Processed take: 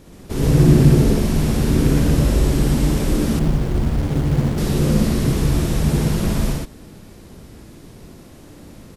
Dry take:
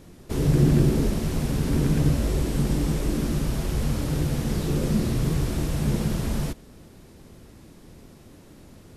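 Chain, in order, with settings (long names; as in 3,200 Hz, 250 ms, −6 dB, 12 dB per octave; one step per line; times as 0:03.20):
loudspeakers that aren't time-aligned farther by 20 metres −1 dB, 42 metres 0 dB
0:03.39–0:04.58: windowed peak hold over 33 samples
level +2.5 dB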